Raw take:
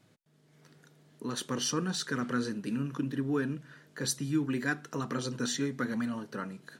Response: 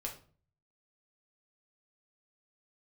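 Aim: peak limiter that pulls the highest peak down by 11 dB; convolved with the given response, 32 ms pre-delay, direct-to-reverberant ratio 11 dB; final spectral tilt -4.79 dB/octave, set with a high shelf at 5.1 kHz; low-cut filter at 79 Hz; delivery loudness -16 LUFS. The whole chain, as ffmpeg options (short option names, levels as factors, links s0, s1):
-filter_complex "[0:a]highpass=79,highshelf=f=5100:g=-6,alimiter=level_in=1.78:limit=0.0631:level=0:latency=1,volume=0.562,asplit=2[s0][s1];[1:a]atrim=start_sample=2205,adelay=32[s2];[s1][s2]afir=irnorm=-1:irlink=0,volume=0.299[s3];[s0][s3]amix=inputs=2:normalize=0,volume=11.9"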